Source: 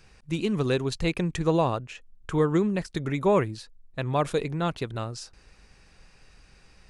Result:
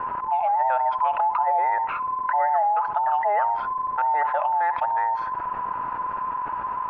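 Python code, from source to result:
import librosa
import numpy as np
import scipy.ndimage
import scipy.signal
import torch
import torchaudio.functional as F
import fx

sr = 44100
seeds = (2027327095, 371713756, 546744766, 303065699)

y = fx.band_invert(x, sr, width_hz=1000)
y = scipy.signal.sosfilt(scipy.signal.butter(4, 950.0, 'highpass', fs=sr, output='sos'), y)
y = fx.dmg_crackle(y, sr, seeds[0], per_s=160.0, level_db=-44.0)
y = scipy.signal.sosfilt(scipy.signal.butter(4, 1300.0, 'lowpass', fs=sr, output='sos'), y)
y = fx.echo_feedback(y, sr, ms=69, feedback_pct=49, wet_db=-22)
y = fx.env_flatten(y, sr, amount_pct=70)
y = F.gain(torch.from_numpy(y), 8.5).numpy()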